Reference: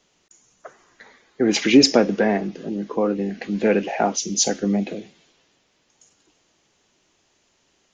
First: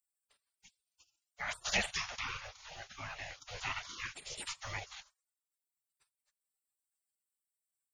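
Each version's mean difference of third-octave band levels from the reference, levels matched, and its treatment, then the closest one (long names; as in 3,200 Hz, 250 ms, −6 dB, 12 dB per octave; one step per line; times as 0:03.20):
16.5 dB: gate on every frequency bin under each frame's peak −30 dB weak
transient designer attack 0 dB, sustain −4 dB
level +4 dB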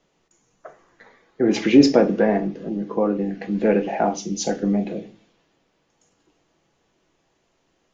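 3.5 dB: high-shelf EQ 2,500 Hz −11.5 dB
rectangular room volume 130 cubic metres, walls furnished, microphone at 0.68 metres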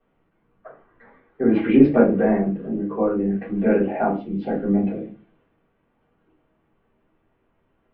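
7.5 dB: Gaussian smoothing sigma 4.5 samples
rectangular room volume 120 cubic metres, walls furnished, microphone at 3.6 metres
level −8.5 dB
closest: second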